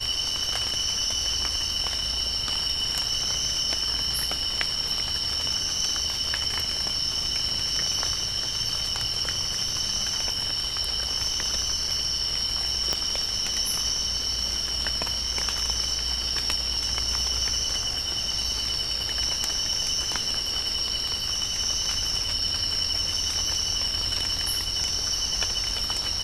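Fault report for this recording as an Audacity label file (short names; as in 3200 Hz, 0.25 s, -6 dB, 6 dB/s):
12.930000	12.930000	pop -10 dBFS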